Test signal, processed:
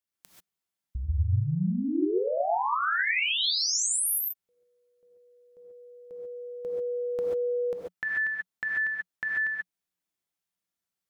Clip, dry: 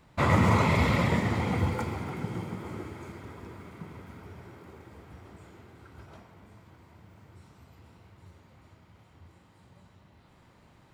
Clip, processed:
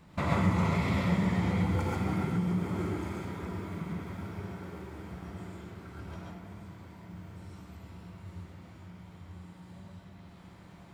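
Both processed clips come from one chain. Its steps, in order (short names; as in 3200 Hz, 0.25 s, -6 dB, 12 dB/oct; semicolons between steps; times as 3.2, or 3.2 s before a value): bell 180 Hz +10.5 dB 0.37 oct; compressor 4:1, threshold -31 dBFS; non-linear reverb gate 0.16 s rising, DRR -2.5 dB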